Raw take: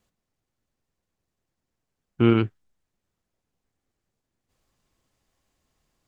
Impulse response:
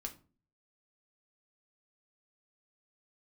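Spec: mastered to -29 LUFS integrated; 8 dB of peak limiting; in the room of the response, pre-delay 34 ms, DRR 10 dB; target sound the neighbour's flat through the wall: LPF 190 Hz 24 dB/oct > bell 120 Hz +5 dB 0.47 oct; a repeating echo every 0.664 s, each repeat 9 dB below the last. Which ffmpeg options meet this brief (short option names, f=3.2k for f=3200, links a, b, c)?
-filter_complex "[0:a]alimiter=limit=-13.5dB:level=0:latency=1,aecho=1:1:664|1328|1992|2656:0.355|0.124|0.0435|0.0152,asplit=2[a][b];[1:a]atrim=start_sample=2205,adelay=34[c];[b][c]afir=irnorm=-1:irlink=0,volume=-7.5dB[d];[a][d]amix=inputs=2:normalize=0,lowpass=f=190:w=0.5412,lowpass=f=190:w=1.3066,equalizer=f=120:t=o:w=0.47:g=5,volume=2.5dB"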